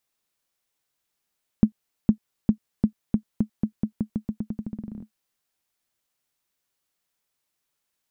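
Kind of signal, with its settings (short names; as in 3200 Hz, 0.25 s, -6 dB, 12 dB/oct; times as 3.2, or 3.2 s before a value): bouncing ball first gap 0.46 s, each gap 0.87, 215 Hz, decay 91 ms -5 dBFS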